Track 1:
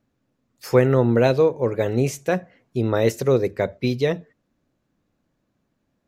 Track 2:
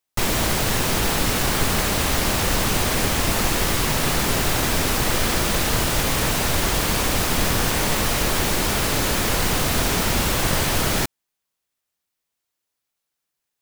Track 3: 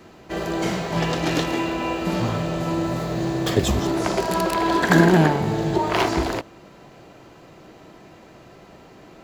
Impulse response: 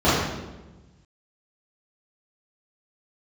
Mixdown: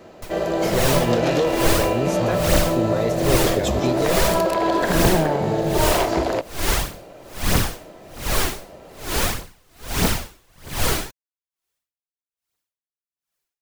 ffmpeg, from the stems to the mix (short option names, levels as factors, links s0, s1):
-filter_complex "[0:a]alimiter=limit=0.188:level=0:latency=1:release=255,volume=1.06[s0];[1:a]aphaser=in_gain=1:out_gain=1:delay=3.1:decay=0.46:speed=1.6:type=triangular,aeval=exprs='val(0)*pow(10,-39*(0.5-0.5*cos(2*PI*1.2*n/s))/20)':c=same,adelay=50,volume=1.06[s1];[2:a]equalizer=f=570:w=2.2:g=11,alimiter=limit=0.335:level=0:latency=1:release=81,volume=0.891[s2];[s0][s1][s2]amix=inputs=3:normalize=0"